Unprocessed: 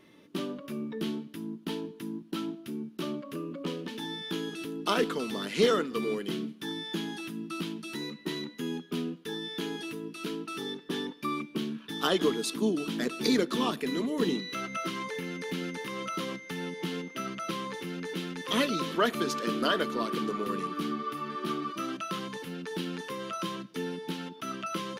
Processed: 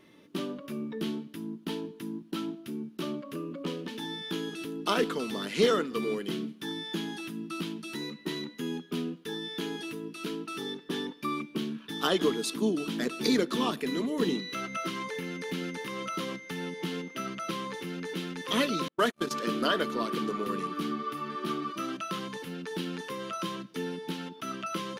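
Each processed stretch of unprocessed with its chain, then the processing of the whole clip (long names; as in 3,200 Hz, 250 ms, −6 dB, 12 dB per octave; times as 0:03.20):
0:18.88–0:19.31: variable-slope delta modulation 64 kbit/s + noise gate −30 dBFS, range −46 dB + one half of a high-frequency compander decoder only
whole clip: no processing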